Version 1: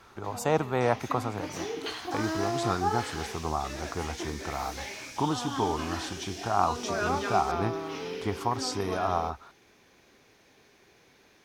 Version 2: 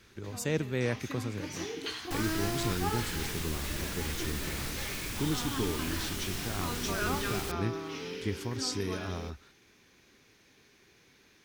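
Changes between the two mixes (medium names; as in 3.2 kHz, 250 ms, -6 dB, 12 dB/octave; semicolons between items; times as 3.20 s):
speech: add high-order bell 970 Hz -12.5 dB 1.2 oct; second sound: remove band-pass filter 5.7 kHz, Q 3; master: add peaking EQ 690 Hz -9 dB 1.3 oct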